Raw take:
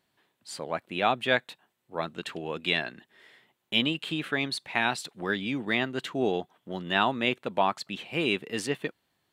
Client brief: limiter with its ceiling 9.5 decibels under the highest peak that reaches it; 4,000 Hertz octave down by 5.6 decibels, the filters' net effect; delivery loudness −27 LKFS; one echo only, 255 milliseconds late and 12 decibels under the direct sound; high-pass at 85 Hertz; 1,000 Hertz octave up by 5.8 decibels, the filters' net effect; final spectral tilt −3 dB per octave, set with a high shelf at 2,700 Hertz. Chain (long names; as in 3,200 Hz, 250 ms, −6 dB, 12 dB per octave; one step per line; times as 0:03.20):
high-pass filter 85 Hz
parametric band 1,000 Hz +8.5 dB
high-shelf EQ 2,700 Hz −5.5 dB
parametric band 4,000 Hz −4 dB
brickwall limiter −15 dBFS
single-tap delay 255 ms −12 dB
level +3.5 dB